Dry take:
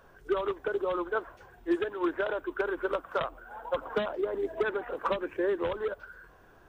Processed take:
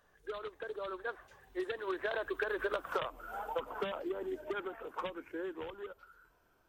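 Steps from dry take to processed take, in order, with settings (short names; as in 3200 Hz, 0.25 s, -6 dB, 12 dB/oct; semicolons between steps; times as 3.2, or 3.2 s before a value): Doppler pass-by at 2.86, 23 m/s, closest 2.9 m; compressor 16:1, threshold -46 dBFS, peak gain reduction 19.5 dB; high shelf 2200 Hz +9 dB; gain +13.5 dB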